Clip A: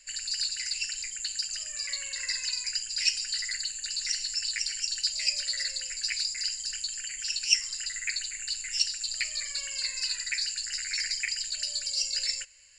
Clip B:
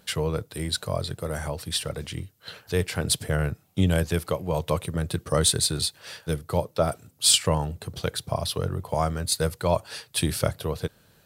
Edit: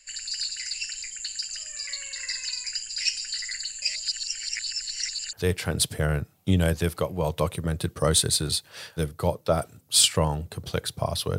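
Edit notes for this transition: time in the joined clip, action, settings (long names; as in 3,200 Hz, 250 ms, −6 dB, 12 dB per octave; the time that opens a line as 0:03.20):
clip A
0:03.82–0:05.33: reverse
0:05.33: continue with clip B from 0:02.63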